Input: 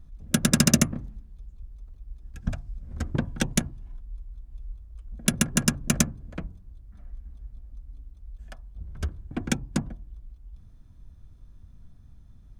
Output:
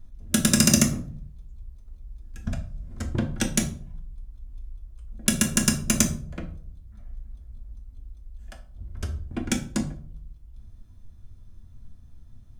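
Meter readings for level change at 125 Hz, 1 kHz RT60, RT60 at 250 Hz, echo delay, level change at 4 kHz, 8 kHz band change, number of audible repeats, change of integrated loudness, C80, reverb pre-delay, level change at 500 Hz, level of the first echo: 0.0 dB, 0.45 s, 0.70 s, none, +2.5 dB, +3.5 dB, none, +2.0 dB, 16.5 dB, 3 ms, +1.0 dB, none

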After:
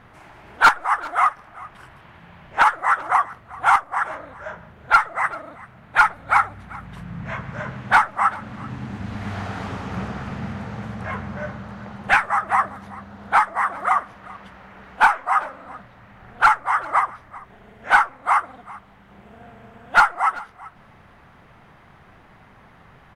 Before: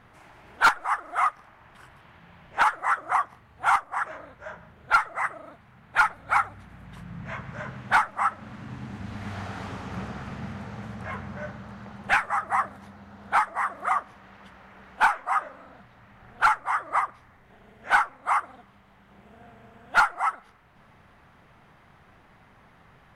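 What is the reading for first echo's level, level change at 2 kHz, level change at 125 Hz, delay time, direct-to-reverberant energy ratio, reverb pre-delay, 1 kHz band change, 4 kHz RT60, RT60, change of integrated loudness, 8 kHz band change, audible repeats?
-20.5 dB, +5.5 dB, +6.0 dB, 0.388 s, none, none, +6.0 dB, none, none, +5.5 dB, n/a, 1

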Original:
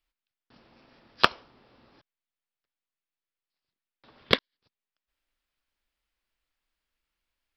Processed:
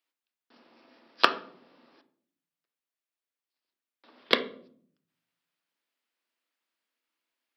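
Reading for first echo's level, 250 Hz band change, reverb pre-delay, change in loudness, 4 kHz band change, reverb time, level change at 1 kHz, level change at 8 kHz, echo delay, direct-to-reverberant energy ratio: none, -1.0 dB, 3 ms, -1.0 dB, -1.0 dB, 0.55 s, 0.0 dB, -1.0 dB, none, 8.0 dB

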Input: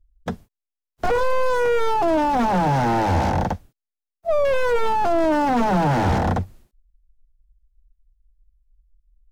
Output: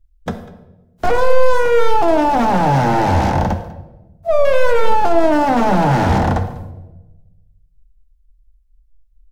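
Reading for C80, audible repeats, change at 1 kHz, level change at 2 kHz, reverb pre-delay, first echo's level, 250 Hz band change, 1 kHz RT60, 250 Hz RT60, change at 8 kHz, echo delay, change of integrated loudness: 12.0 dB, 1, +5.0 dB, +4.5 dB, 14 ms, -20.5 dB, +4.5 dB, 0.85 s, 1.4 s, +4.5 dB, 0.197 s, +5.0 dB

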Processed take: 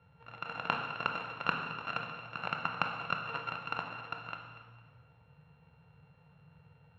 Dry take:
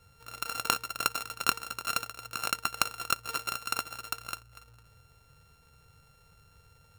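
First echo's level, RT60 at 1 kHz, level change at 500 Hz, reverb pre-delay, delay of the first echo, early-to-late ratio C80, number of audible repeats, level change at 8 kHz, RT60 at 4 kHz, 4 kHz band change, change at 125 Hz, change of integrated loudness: none, 1.4 s, +0.5 dB, 18 ms, none, 7.0 dB, none, under -30 dB, 1.4 s, -8.5 dB, +3.0 dB, -4.5 dB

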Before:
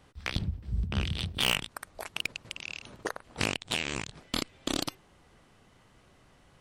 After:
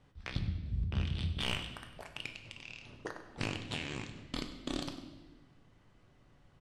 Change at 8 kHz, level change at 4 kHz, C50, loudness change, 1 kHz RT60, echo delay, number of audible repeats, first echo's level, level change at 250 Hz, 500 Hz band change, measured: -13.0 dB, -9.0 dB, 8.5 dB, -6.5 dB, 0.95 s, 98 ms, 1, -16.0 dB, -4.0 dB, -6.5 dB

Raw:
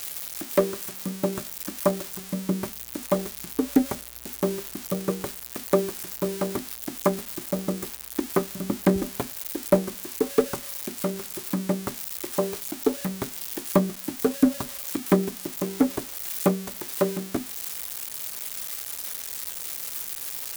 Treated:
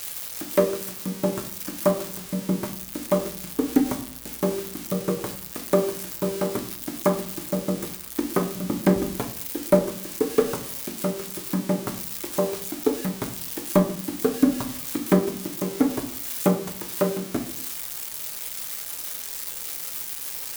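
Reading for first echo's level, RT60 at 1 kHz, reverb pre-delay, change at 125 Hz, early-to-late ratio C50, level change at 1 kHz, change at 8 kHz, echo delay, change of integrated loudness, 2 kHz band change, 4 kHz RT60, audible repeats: none, 0.60 s, 6 ms, +2.0 dB, 12.0 dB, +1.0 dB, +1.0 dB, none, +1.5 dB, +1.0 dB, 0.45 s, none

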